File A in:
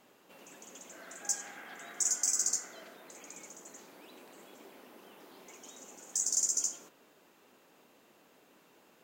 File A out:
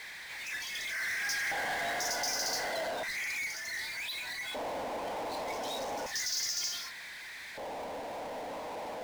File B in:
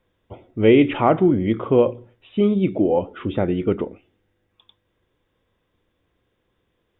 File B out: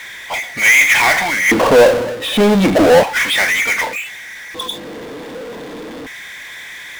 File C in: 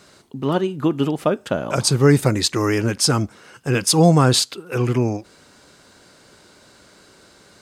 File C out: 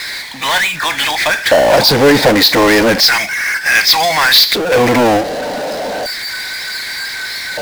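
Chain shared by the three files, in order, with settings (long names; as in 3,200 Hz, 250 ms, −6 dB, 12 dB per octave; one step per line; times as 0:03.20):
auto-filter high-pass square 0.33 Hz 390–2,000 Hz
noise reduction from a noise print of the clip's start 14 dB
Butterworth low-pass 4,900 Hz 36 dB per octave
phaser with its sweep stopped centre 1,900 Hz, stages 8
power curve on the samples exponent 0.35
level +6 dB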